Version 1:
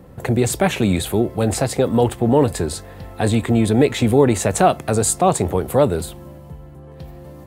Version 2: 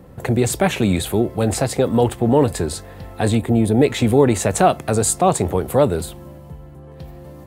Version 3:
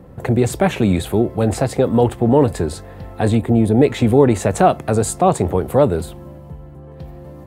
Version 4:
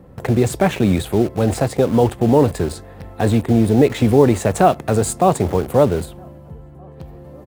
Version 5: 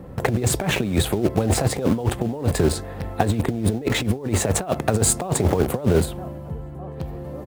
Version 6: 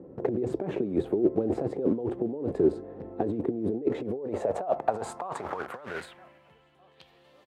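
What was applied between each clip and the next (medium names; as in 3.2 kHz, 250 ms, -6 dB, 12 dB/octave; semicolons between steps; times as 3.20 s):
time-frequency box 3.37–3.82 s, 940–8700 Hz -7 dB
treble shelf 2.4 kHz -8 dB; trim +2 dB
echo from a far wall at 270 m, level -28 dB; in parallel at -10 dB: bit crusher 4-bit; on the sum: trim -2.5 dB
compressor with a negative ratio -19 dBFS, ratio -0.5
band-pass sweep 360 Hz -> 3.3 kHz, 3.84–6.83 s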